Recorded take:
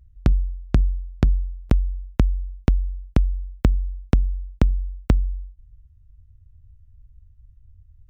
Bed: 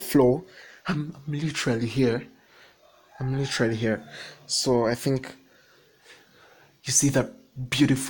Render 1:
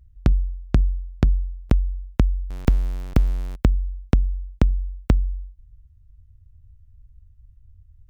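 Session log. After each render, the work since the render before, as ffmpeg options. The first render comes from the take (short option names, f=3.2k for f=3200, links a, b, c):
-filter_complex "[0:a]asettb=1/sr,asplit=3[a][b][c];[a]atrim=end=2.504[d];[b]atrim=start=2.5:end=3.56,asetpts=PTS-STARTPTS,afade=t=in:d=0.004:c=qsin,afade=t=out:st=1.056:d=0.004:c=qsin,aeval=exprs='val(0)+0.5*0.0355*sgn(val(0))':c=same[e];[c]atrim=start=3.556[f];[d][e]acrossfade=d=0.004:c1=hsin:c2=qsin[g];[g][f]acrossfade=d=0.004:c1=qsin:c2=hsin"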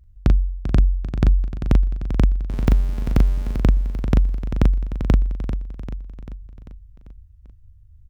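-filter_complex "[0:a]asplit=2[a][b];[b]adelay=39,volume=-4dB[c];[a][c]amix=inputs=2:normalize=0,aecho=1:1:393|786|1179|1572|1965|2358:0.316|0.174|0.0957|0.0526|0.0289|0.0159"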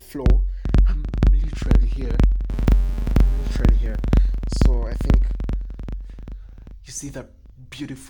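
-filter_complex "[1:a]volume=-11.5dB[a];[0:a][a]amix=inputs=2:normalize=0"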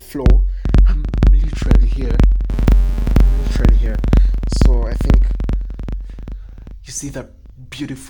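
-af "volume=6dB,alimiter=limit=-1dB:level=0:latency=1"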